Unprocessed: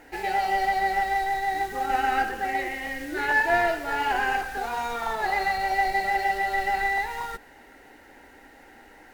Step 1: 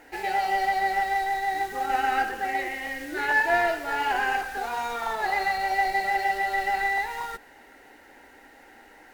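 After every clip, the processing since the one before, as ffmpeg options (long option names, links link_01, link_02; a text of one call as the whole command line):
ffmpeg -i in.wav -af "lowshelf=frequency=220:gain=-6.5" out.wav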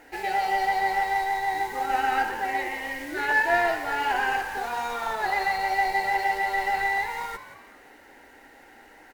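ffmpeg -i in.wav -filter_complex "[0:a]asplit=5[link_01][link_02][link_03][link_04][link_05];[link_02]adelay=175,afreqshift=94,volume=-13dB[link_06];[link_03]adelay=350,afreqshift=188,volume=-21.4dB[link_07];[link_04]adelay=525,afreqshift=282,volume=-29.8dB[link_08];[link_05]adelay=700,afreqshift=376,volume=-38.2dB[link_09];[link_01][link_06][link_07][link_08][link_09]amix=inputs=5:normalize=0" out.wav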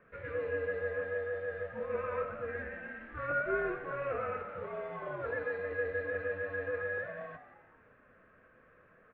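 ffmpeg -i in.wav -af "flanger=delay=3.8:depth=2.3:regen=-65:speed=0.55:shape=triangular,acrusher=samples=5:mix=1:aa=0.000001,highpass=frequency=360:width_type=q:width=0.5412,highpass=frequency=360:width_type=q:width=1.307,lowpass=frequency=2800:width_type=q:width=0.5176,lowpass=frequency=2800:width_type=q:width=0.7071,lowpass=frequency=2800:width_type=q:width=1.932,afreqshift=-300,volume=-6dB" out.wav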